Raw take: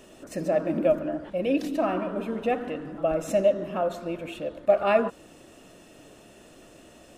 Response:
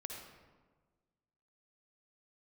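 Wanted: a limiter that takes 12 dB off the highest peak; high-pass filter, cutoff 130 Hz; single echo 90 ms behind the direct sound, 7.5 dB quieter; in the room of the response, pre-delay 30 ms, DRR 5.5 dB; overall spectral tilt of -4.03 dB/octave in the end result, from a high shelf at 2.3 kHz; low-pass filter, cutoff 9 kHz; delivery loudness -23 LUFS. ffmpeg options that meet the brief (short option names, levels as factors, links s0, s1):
-filter_complex "[0:a]highpass=130,lowpass=9000,highshelf=f=2300:g=-4.5,alimiter=limit=0.0891:level=0:latency=1,aecho=1:1:90:0.422,asplit=2[s0][s1];[1:a]atrim=start_sample=2205,adelay=30[s2];[s1][s2]afir=irnorm=-1:irlink=0,volume=0.668[s3];[s0][s3]amix=inputs=2:normalize=0,volume=2.11"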